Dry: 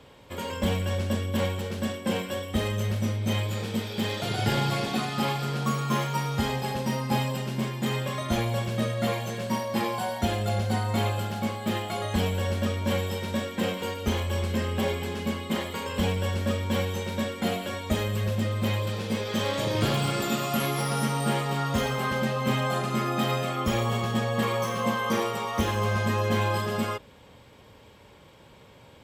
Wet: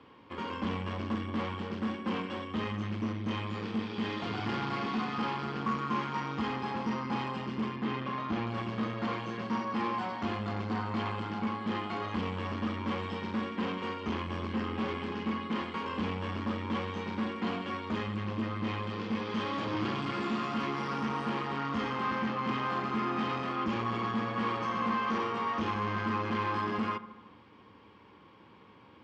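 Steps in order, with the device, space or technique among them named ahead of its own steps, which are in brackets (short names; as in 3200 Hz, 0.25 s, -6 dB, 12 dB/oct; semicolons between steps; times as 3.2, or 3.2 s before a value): 7.76–8.47 air absorption 110 m; analogue delay pedal into a guitar amplifier (analogue delay 73 ms, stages 1024, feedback 65%, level -16 dB; tube stage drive 30 dB, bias 0.75; speaker cabinet 100–4400 Hz, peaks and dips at 140 Hz -6 dB, 210 Hz +4 dB, 310 Hz +7 dB, 600 Hz -9 dB, 1100 Hz +8 dB, 3800 Hz -7 dB)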